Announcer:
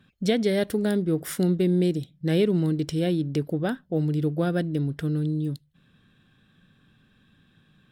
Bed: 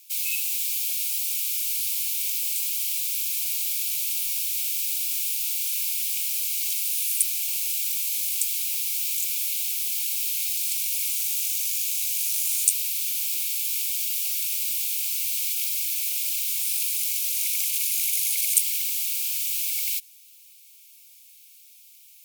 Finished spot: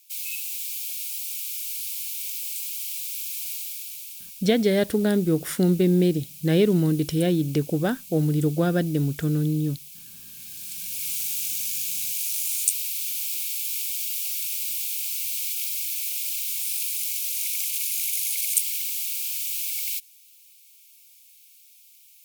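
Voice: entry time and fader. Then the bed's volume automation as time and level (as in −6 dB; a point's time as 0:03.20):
4.20 s, +2.5 dB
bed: 0:03.52 −5 dB
0:04.44 −17 dB
0:10.26 −17 dB
0:11.13 −2 dB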